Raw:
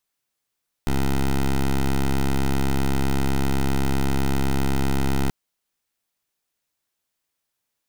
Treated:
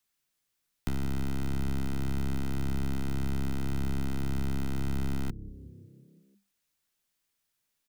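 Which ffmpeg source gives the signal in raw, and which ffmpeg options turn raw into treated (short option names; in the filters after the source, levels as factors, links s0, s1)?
-f lavfi -i "aevalsrc='0.1*(2*lt(mod(67.8*t,1),0.12)-1)':d=4.43:s=44100"
-filter_complex "[0:a]acrossover=split=210|590[s0][s1][s2];[s0]acompressor=threshold=0.0316:ratio=4[s3];[s1]acompressor=threshold=0.01:ratio=4[s4];[s2]acompressor=threshold=0.00708:ratio=4[s5];[s3][s4][s5]amix=inputs=3:normalize=0,acrossover=split=360|1200[s6][s7][s8];[s6]asplit=7[s9][s10][s11][s12][s13][s14][s15];[s10]adelay=173,afreqshift=33,volume=0.178[s16];[s11]adelay=346,afreqshift=66,volume=0.108[s17];[s12]adelay=519,afreqshift=99,volume=0.0661[s18];[s13]adelay=692,afreqshift=132,volume=0.0403[s19];[s14]adelay=865,afreqshift=165,volume=0.0245[s20];[s15]adelay=1038,afreqshift=198,volume=0.015[s21];[s9][s16][s17][s18][s19][s20][s21]amix=inputs=7:normalize=0[s22];[s7]aeval=exprs='max(val(0),0)':c=same[s23];[s22][s23][s8]amix=inputs=3:normalize=0"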